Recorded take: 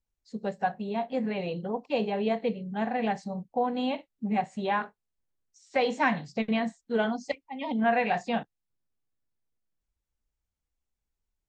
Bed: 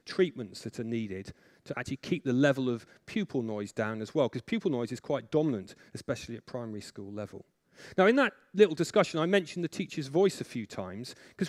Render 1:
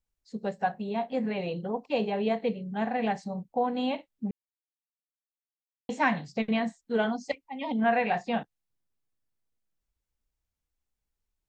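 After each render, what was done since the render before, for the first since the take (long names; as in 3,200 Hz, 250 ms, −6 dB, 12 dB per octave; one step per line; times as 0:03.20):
0:04.31–0:05.89: silence
0:07.97–0:08.39: high-frequency loss of the air 77 metres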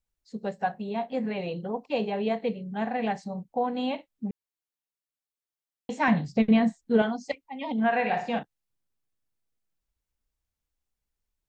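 0:06.08–0:07.02: low-shelf EQ 410 Hz +10.5 dB
0:07.72–0:08.39: flutter between parallel walls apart 10 metres, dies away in 0.43 s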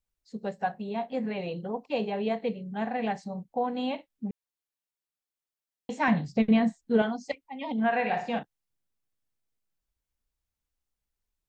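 level −1.5 dB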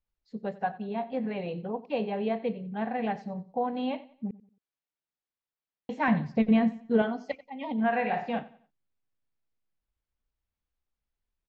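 high-frequency loss of the air 190 metres
repeating echo 91 ms, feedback 34%, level −18.5 dB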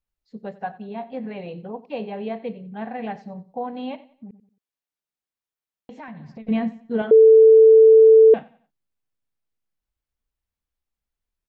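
0:03.95–0:06.47: downward compressor, threshold −36 dBFS
0:07.11–0:08.34: beep over 443 Hz −7 dBFS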